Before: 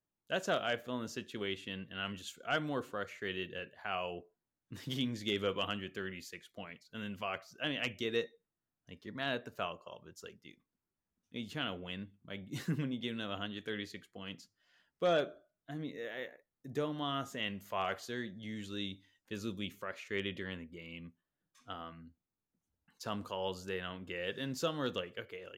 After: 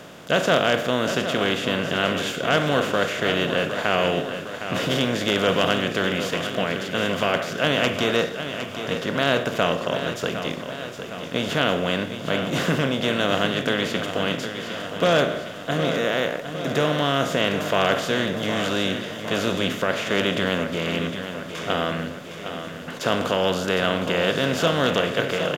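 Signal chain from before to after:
compressor on every frequency bin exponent 0.4
repeating echo 760 ms, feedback 59%, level −9.5 dB
level +8 dB

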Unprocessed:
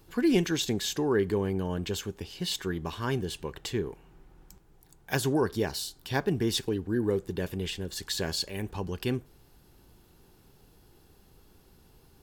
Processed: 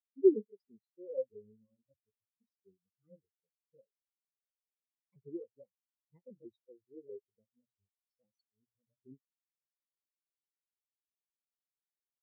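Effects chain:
pitch shifter swept by a sawtooth +5.5 semitones, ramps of 645 ms
mains-hum notches 60/120 Hz
every bin expanded away from the loudest bin 4 to 1

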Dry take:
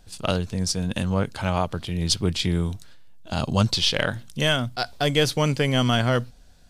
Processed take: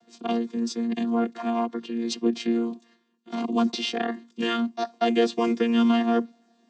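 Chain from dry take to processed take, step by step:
channel vocoder with a chord as carrier bare fifth, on A#3

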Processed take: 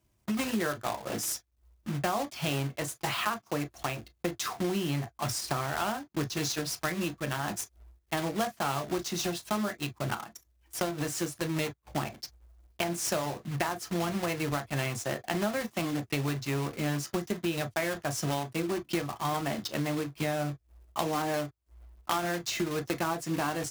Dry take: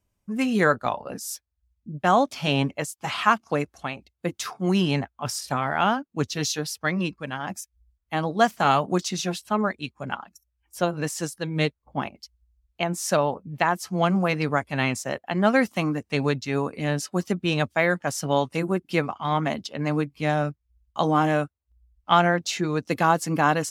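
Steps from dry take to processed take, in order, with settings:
one scale factor per block 3 bits
high-pass filter 41 Hz
on a send at −7 dB: convolution reverb, pre-delay 3 ms
on the sum: downward compressor 6 to 1, threshold −31 dBFS, peak gain reduction 18.5 dB
level +2.5 dB

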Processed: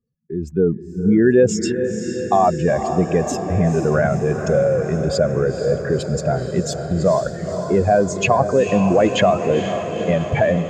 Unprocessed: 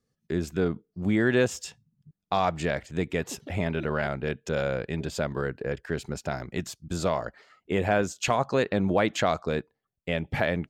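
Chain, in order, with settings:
expanding power law on the bin magnitudes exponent 2
automatic gain control gain up to 12 dB
on a send: feedback delay with all-pass diffusion 481 ms, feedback 69%, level −8.5 dB
on the sum: level −1 dB

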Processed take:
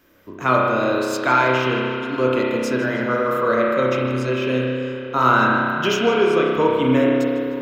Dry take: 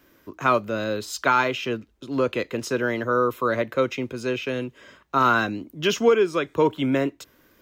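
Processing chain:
tape delay 154 ms, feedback 79%, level −12 dB, low-pass 5,100 Hz
spring reverb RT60 2.2 s, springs 31 ms, chirp 40 ms, DRR −3 dB

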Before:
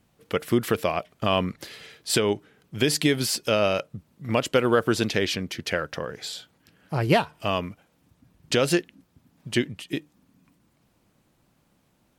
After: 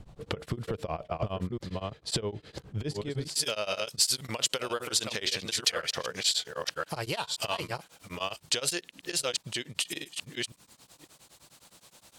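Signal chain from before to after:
delay that plays each chunk backwards 526 ms, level −7.5 dB
brickwall limiter −18 dBFS, peak gain reduction 11.5 dB
spectral tilt −4 dB per octave, from 0:03.34 +1.5 dB per octave
downward compressor 4 to 1, threshold −39 dBFS, peak gain reduction 19 dB
octave-band graphic EQ 250/500/1,000/4,000/8,000 Hz −5/+3/+4/+8/+9 dB
tremolo along a rectified sine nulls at 9.7 Hz
level +7.5 dB

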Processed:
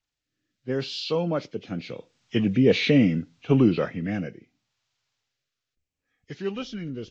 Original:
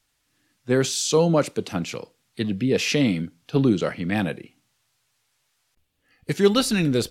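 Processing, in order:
hearing-aid frequency compression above 1,800 Hz 1.5 to 1
source passing by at 0:02.88, 7 m/s, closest 3.7 metres
rotating-speaker cabinet horn 0.75 Hz
level +5.5 dB

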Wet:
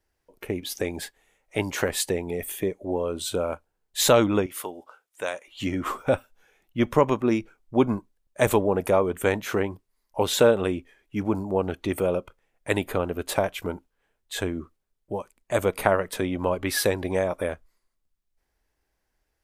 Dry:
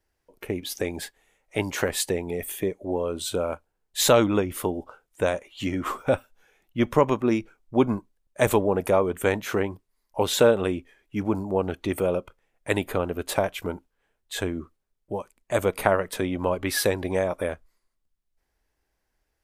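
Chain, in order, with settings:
0:04.46–0:05.48: high-pass filter 1,100 Hz 6 dB per octave

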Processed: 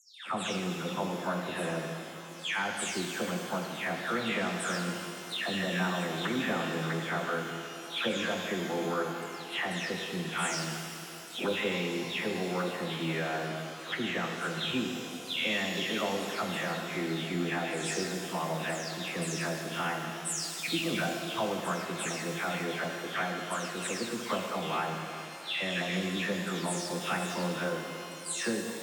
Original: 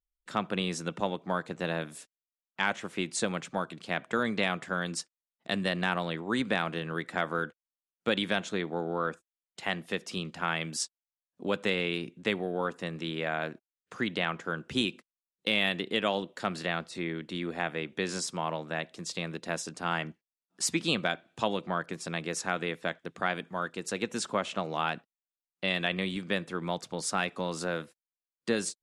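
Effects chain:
every frequency bin delayed by itself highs early, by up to 362 ms
camcorder AGC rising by 7.7 dB per second
high-pass filter 82 Hz
reverb with rising layers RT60 3.1 s, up +12 semitones, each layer −8 dB, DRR 2.5 dB
level −2.5 dB

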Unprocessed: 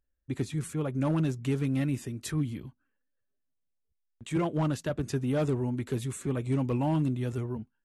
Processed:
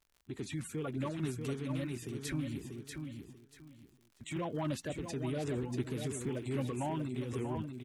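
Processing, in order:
spectral magnitudes quantised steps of 30 dB
dynamic equaliser 2,200 Hz, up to +5 dB, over −49 dBFS, Q 0.92
brickwall limiter −27 dBFS, peak gain reduction 8.5 dB
surface crackle 77 per second −49 dBFS
repeating echo 638 ms, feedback 26%, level −7 dB
amplitude modulation by smooth noise, depth 55%

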